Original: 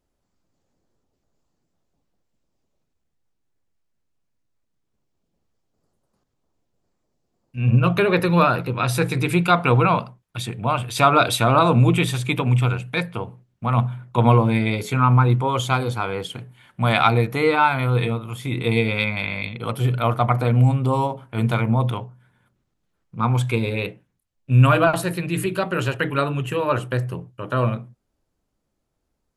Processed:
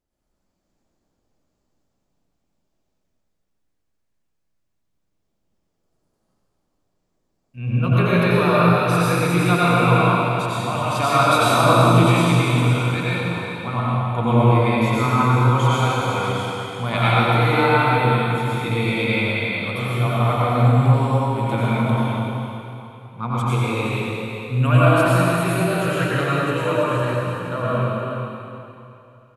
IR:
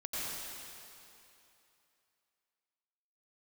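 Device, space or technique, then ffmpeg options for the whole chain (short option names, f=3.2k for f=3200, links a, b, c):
cave: -filter_complex "[0:a]aecho=1:1:375:0.316[a];[1:a]atrim=start_sample=2205[b];[a][b]afir=irnorm=-1:irlink=0,volume=-2dB"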